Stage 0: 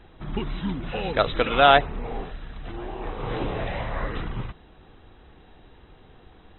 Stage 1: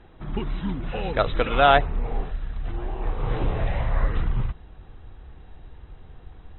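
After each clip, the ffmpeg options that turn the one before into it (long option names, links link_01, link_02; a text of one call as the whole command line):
ffmpeg -i in.wav -af "lowpass=frequency=2700:poles=1,asubboost=boost=3:cutoff=140" out.wav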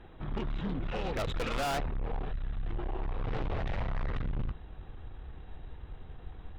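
ffmpeg -i in.wav -af "aeval=exprs='(tanh(31.6*val(0)+0.35)-tanh(0.35))/31.6':channel_layout=same" out.wav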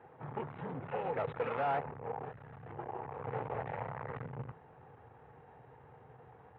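ffmpeg -i in.wav -af "highpass=frequency=120:width=0.5412,highpass=frequency=120:width=1.3066,equalizer=frequency=130:width_type=q:width=4:gain=3,equalizer=frequency=200:width_type=q:width=4:gain=-9,equalizer=frequency=320:width_type=q:width=4:gain=-8,equalizer=frequency=470:width_type=q:width=4:gain=7,equalizer=frequency=860:width_type=q:width=4:gain=8,lowpass=frequency=2200:width=0.5412,lowpass=frequency=2200:width=1.3066,volume=-3dB" out.wav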